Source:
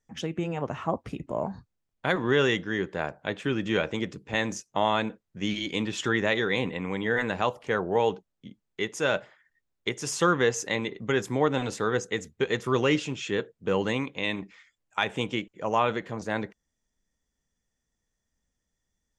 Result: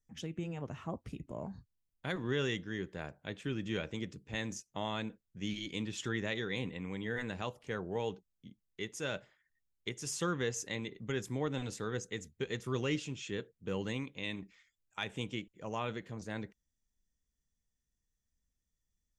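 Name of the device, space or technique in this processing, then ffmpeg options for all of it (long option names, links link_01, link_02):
smiley-face EQ: -af "lowshelf=frequency=110:gain=8,equalizer=frequency=880:width_type=o:width=2.1:gain=-6.5,highshelf=frequency=7200:gain=5.5,volume=-9dB"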